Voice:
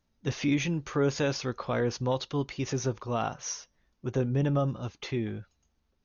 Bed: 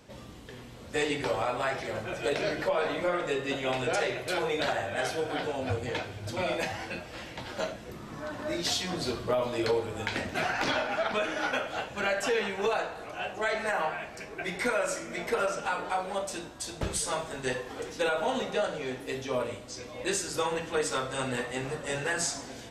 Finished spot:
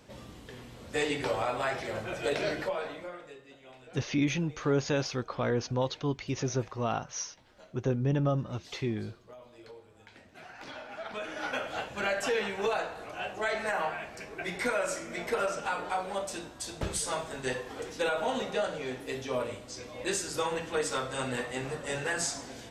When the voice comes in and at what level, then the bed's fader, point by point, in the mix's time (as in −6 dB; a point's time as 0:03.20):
3.70 s, −1.0 dB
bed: 0:02.54 −1 dB
0:03.50 −22.5 dB
0:10.23 −22.5 dB
0:11.68 −1.5 dB